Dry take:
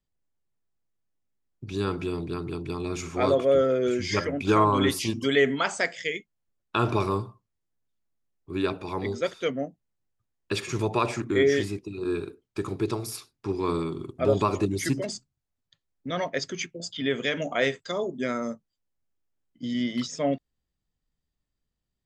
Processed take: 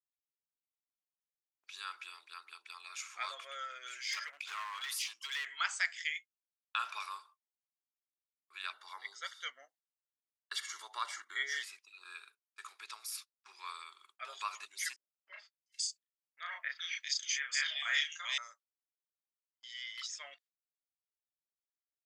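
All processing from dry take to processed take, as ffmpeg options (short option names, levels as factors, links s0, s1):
-filter_complex "[0:a]asettb=1/sr,asplit=3[s0][s1][s2];[s0]atrim=end=4.034[s3];[s1]atrim=start=4.03:end=5.46,asetpts=PTS-STARTPTS,afade=t=in:d=0.004:c=qsin,afade=t=out:st=1.426:d=0.004:c=qsin,acompressor=threshold=0.0794:ratio=3:attack=3.2:release=140:knee=1:detection=peak,asoftclip=type=hard:threshold=0.0708[s4];[s2]atrim=start=5.456[s5];[s3][s4]acrossfade=d=0.004:c1=hsin:c2=qsin[s6];[s6][s5]acrossfade=d=0.004:c1=qsin:c2=hsin,asettb=1/sr,asplit=3[s7][s8][s9];[s7]atrim=end=8.734[s10];[s8]atrim=start=8.73:end=11.63,asetpts=PTS-STARTPTS,afade=t=in:d=0.004:c=qsin,afade=t=out:st=2.896:d=0.004:c=qsin,asuperstop=centerf=2500:order=8:qfactor=5.4,equalizer=f=180:t=o:w=2.5:g=9[s11];[s9]atrim=start=11.626[s12];[s10][s11]acrossfade=d=0.004:c1=hsin:c2=qsin[s13];[s13][s12]acrossfade=d=0.004:c1=qsin:c2=hsin,asettb=1/sr,asplit=3[s14][s15][s16];[s14]atrim=end=14.964[s17];[s15]atrim=start=14.96:end=18.38,asetpts=PTS-STARTPTS,afade=t=in:d=0.004:c=qsin,afade=t=out:st=3.416:d=0.004:c=qsin,tiltshelf=f=1200:g=-5.5,asplit=2[s18][s19];[s19]adelay=35,volume=0.75[s20];[s18][s20]amix=inputs=2:normalize=0,atrim=end_sample=150822,acrossover=split=160|2400[s21][s22][s23];[s22]adelay=300[s24];[s23]adelay=700[s25];[s21][s24][s25]amix=inputs=3:normalize=0,atrim=end_sample=150822[s26];[s16]atrim=start=18.376[s27];[s17][s26]acrossfade=d=0.004:c1=hsin:c2=qsin[s28];[s28][s27]acrossfade=d=0.004:c1=qsin:c2=hsin,agate=range=0.0447:threshold=0.00891:ratio=16:detection=peak,highpass=f=1300:w=0.5412,highpass=f=1300:w=1.3066,volume=0.562"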